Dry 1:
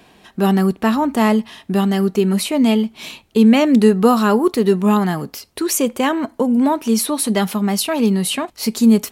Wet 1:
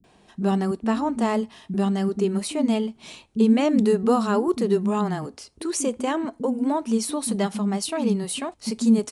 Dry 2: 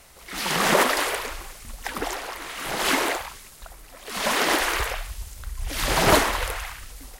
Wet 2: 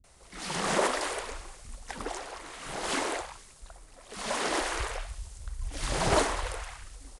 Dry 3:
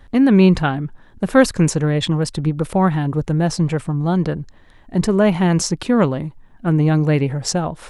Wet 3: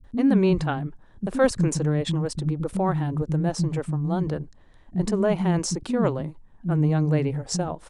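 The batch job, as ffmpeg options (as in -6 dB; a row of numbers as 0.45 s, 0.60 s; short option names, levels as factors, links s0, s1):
-filter_complex "[0:a]equalizer=f=2400:t=o:w=2.5:g=-6,aresample=22050,aresample=44100,acrossover=split=240[s0][s1];[s1]adelay=40[s2];[s0][s2]amix=inputs=2:normalize=0,volume=0.596"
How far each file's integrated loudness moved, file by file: -7.0 LU, -8.0 LU, -7.0 LU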